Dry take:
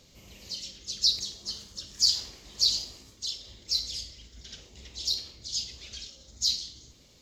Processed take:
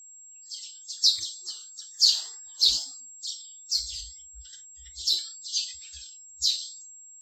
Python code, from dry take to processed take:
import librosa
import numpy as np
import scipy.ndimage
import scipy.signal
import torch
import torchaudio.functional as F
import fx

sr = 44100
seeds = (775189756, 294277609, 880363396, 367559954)

y = fx.noise_reduce_blind(x, sr, reduce_db=26)
y = fx.comb(y, sr, ms=5.4, depth=0.91, at=(4.69, 5.73))
y = fx.wow_flutter(y, sr, seeds[0], rate_hz=2.1, depth_cents=100.0)
y = y + 10.0 ** (-40.0 / 20.0) * np.sin(2.0 * np.pi * 7600.0 * np.arange(len(y)) / sr)
y = fx.band_widen(y, sr, depth_pct=40)